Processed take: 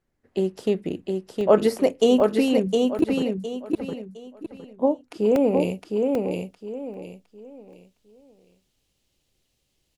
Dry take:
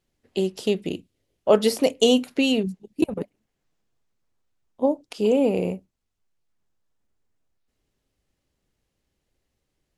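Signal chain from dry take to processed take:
high shelf with overshoot 2,300 Hz −7 dB, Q 1.5, from 0:05.60 +6.5 dB
repeating echo 711 ms, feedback 30%, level −3.5 dB
regular buffer underruns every 0.79 s, samples 64, zero, from 0:00.62

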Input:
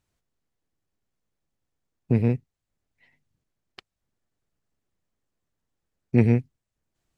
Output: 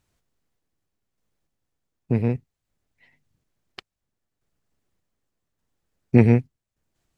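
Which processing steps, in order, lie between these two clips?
dynamic equaliser 960 Hz, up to +4 dB, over −35 dBFS, Q 0.75
sample-and-hold tremolo 3.4 Hz
level +5.5 dB

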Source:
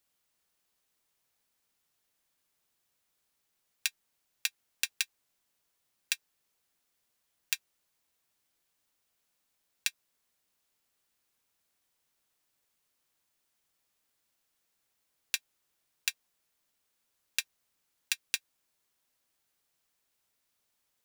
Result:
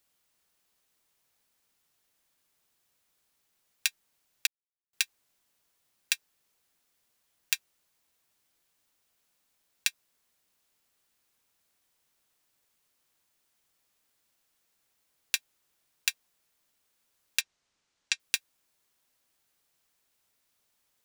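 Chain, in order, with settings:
0:04.47–0:04.93: silence
0:17.41–0:18.20: low-pass filter 7,300 Hz 24 dB per octave
level +3.5 dB

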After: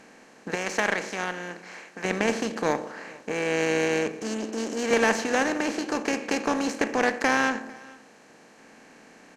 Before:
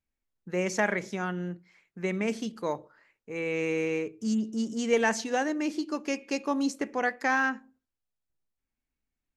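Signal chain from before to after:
compressor on every frequency bin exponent 0.4
0:00.55–0:02.05: low-shelf EQ 430 Hz −9.5 dB
0:04.22–0:04.91: high-pass filter 220 Hz 24 dB per octave
harmonic generator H 7 −24 dB, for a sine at −7 dBFS
on a send: single-tap delay 449 ms −23.5 dB

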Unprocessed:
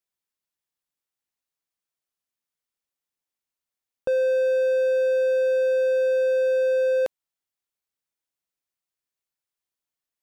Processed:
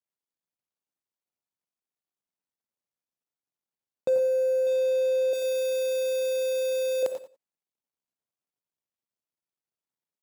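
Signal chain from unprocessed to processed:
running median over 25 samples
high-pass filter 130 Hz
bass and treble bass +2 dB, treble +7 dB
0:04.09–0:04.67: phaser with its sweep stopped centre 890 Hz, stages 6
0:05.33–0:07.03: spectral tilt +3 dB per octave
repeating echo 89 ms, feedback 18%, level −11.5 dB
reverb whose tail is shaped and stops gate 130 ms rising, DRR 8.5 dB

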